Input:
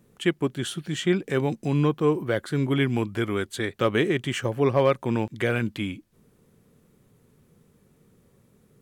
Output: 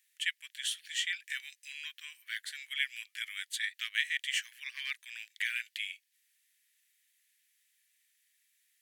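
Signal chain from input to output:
Chebyshev high-pass filter 1,800 Hz, order 5

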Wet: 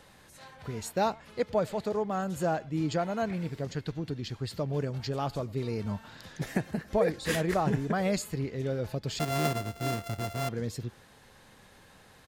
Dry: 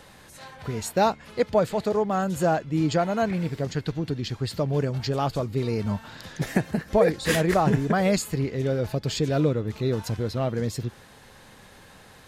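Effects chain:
0:09.19–0:10.49: samples sorted by size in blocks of 64 samples
far-end echo of a speakerphone 100 ms, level −23 dB
level −6.5 dB

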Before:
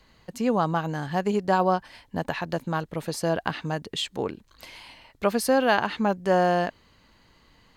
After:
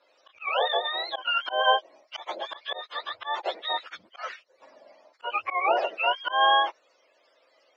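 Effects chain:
frequency axis turned over on the octave scale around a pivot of 760 Hz
elliptic band-pass filter 540–5,400 Hz, stop band 50 dB
volume swells 164 ms
level +4 dB

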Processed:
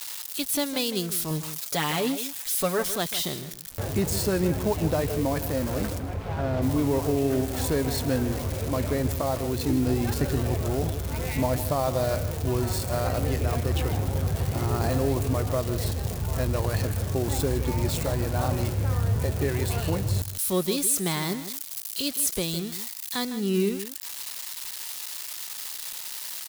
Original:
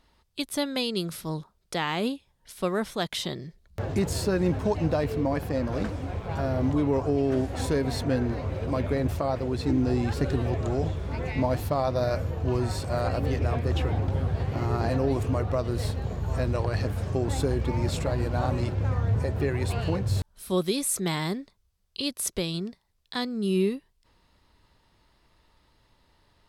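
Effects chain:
spike at every zero crossing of −24 dBFS
0:01.30–0:02.87: comb filter 7 ms, depth 65%
0:05.98–0:06.61: low-pass filter 1,800 Hz → 3,800 Hz 12 dB per octave
bit reduction 9 bits
slap from a distant wall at 27 metres, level −12 dB

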